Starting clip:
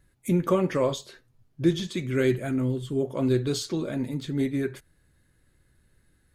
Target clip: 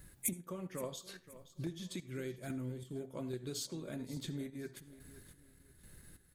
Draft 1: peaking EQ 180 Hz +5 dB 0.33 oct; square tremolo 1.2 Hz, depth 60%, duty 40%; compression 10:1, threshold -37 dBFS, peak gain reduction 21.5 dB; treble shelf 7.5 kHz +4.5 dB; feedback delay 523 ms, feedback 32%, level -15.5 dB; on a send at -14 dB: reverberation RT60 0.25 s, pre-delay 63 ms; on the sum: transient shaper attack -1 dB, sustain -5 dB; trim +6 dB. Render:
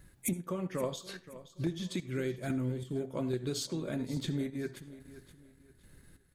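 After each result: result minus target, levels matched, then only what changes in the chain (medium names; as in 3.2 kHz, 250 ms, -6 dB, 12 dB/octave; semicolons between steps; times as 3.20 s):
compression: peak gain reduction -7.5 dB; 8 kHz band -6.0 dB
change: compression 10:1, threshold -45.5 dBFS, peak gain reduction 29.5 dB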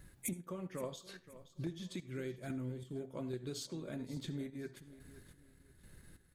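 8 kHz band -4.5 dB
change: treble shelf 7.5 kHz +13.5 dB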